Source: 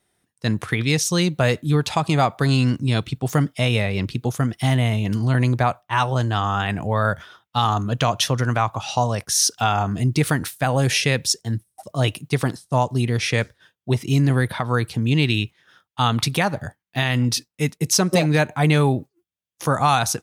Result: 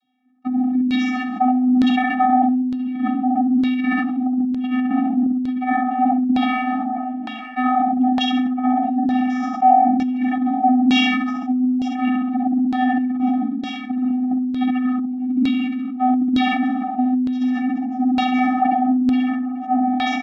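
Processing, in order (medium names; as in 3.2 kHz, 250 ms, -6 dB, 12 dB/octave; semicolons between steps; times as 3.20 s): comb filter that takes the minimum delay 0.31 ms; treble shelf 5.4 kHz -4.5 dB; flutter echo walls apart 11.4 m, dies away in 1 s; vocoder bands 32, square 253 Hz; peaking EQ 1.7 kHz -3 dB 0.42 oct; band-stop 1.4 kHz, Q 20; doubling 48 ms -11 dB; feedback delay 421 ms, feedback 32%, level -12 dB; compressor with a negative ratio -22 dBFS, ratio -0.5; LFO low-pass saw down 1.1 Hz 350–4000 Hz; decay stretcher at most 25 dB/s; trim +2 dB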